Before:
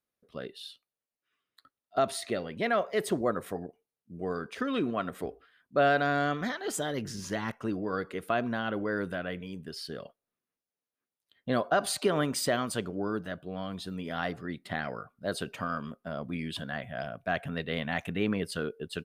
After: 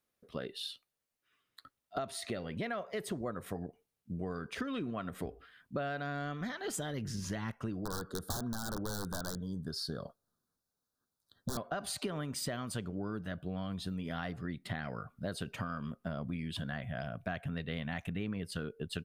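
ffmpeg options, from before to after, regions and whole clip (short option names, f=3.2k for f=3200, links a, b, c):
-filter_complex "[0:a]asettb=1/sr,asplit=3[a][b][c];[a]atrim=end=7.794[d];[b]atrim=start=7.79:end=11.57,asetpts=PTS-STARTPTS,afade=t=in:d=0.004:c=qsin,afade=t=out:st=3.776:d=0.004:c=qsin,equalizer=f=2.3k:t=o:w=1.1:g=8.5,aeval=exprs='(mod(15*val(0)+1,2)-1)/15':c=same,asuperstop=centerf=2400:order=8:qfactor=1.1[e];[c]atrim=start=11.566[f];[d][e]acrossfade=d=0.004:c1=hsin:c2=qsin[g];[g][f]acrossfade=d=0.004:c1=qsin:c2=hsin,asubboost=boost=2.5:cutoff=210,acompressor=threshold=-40dB:ratio=6,volume=4.5dB"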